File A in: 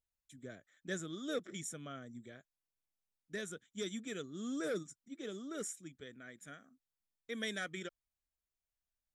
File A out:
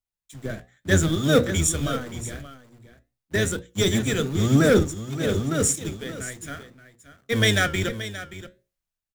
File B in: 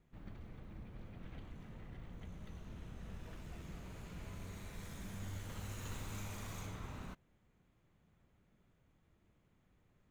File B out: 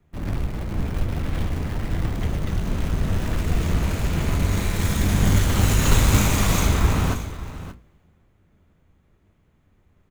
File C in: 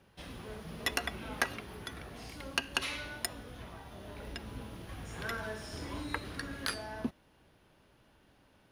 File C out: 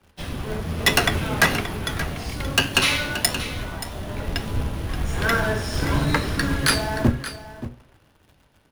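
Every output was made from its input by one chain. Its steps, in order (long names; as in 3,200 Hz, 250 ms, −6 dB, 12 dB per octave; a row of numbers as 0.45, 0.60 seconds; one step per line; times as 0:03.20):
sub-octave generator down 1 octave, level +2 dB
in parallel at −6 dB: log-companded quantiser 4 bits
on the sum: mains-hum notches 60/120/180/240/300/360/420/480/540 Hz
flanger 1.1 Hz, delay 9.5 ms, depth 5.5 ms, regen −75%
hard clipping −28.5 dBFS
on a send: single-tap delay 577 ms −10 dB
on the sum: multiband upward and downward expander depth 40%
loudness normalisation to −23 LKFS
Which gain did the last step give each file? +19.0, +24.5, +16.5 decibels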